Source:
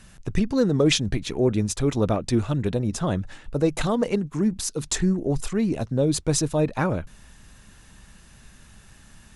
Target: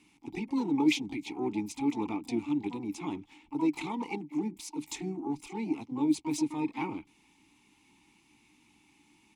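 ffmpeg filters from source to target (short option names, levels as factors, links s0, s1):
-filter_complex "[0:a]crystalizer=i=6.5:c=0,asplit=3[s0][s1][s2];[s1]asetrate=37084,aresample=44100,atempo=1.18921,volume=0.158[s3];[s2]asetrate=88200,aresample=44100,atempo=0.5,volume=0.398[s4];[s0][s3][s4]amix=inputs=3:normalize=0,asplit=3[s5][s6][s7];[s5]bandpass=f=300:t=q:w=8,volume=1[s8];[s6]bandpass=f=870:t=q:w=8,volume=0.501[s9];[s7]bandpass=f=2240:t=q:w=8,volume=0.355[s10];[s8][s9][s10]amix=inputs=3:normalize=0"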